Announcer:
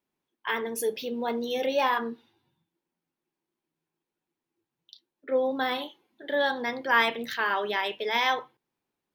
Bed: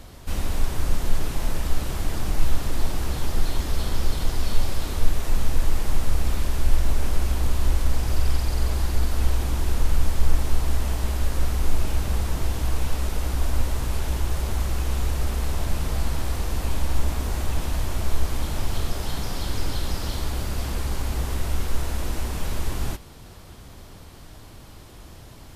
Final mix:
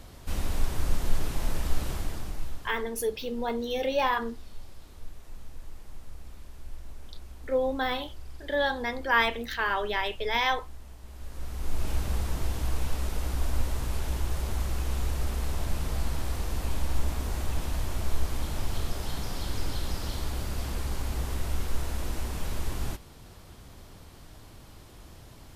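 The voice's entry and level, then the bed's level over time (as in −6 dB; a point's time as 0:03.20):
2.20 s, −1.0 dB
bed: 0:01.91 −4 dB
0:02.91 −22 dB
0:11.02 −22 dB
0:11.90 −5 dB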